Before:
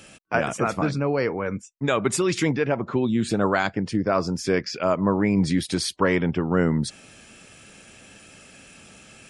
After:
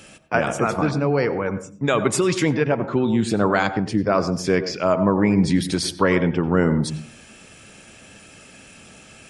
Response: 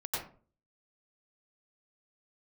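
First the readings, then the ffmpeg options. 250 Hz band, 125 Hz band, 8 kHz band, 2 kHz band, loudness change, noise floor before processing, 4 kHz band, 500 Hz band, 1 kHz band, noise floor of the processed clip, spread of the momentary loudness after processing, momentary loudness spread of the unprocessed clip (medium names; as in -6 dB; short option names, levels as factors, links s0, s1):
+3.0 dB, +3.0 dB, +2.0 dB, +2.5 dB, +3.0 dB, -49 dBFS, +2.0 dB, +3.0 dB, +3.0 dB, -47 dBFS, 5 LU, 5 LU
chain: -filter_complex "[0:a]asplit=2[s0][s1];[1:a]atrim=start_sample=2205,highshelf=f=2600:g=-10.5[s2];[s1][s2]afir=irnorm=-1:irlink=0,volume=0.251[s3];[s0][s3]amix=inputs=2:normalize=0,volume=1.19"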